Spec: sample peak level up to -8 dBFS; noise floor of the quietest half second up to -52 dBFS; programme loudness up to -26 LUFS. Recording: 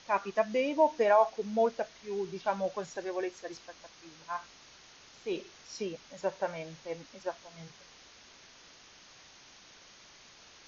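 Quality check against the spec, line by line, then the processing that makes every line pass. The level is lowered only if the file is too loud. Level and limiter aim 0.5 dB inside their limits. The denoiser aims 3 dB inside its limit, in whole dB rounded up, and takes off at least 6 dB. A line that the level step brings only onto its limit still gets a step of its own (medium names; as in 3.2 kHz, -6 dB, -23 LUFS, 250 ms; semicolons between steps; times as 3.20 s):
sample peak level -13.5 dBFS: pass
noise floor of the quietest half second -56 dBFS: pass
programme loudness -32.5 LUFS: pass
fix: none needed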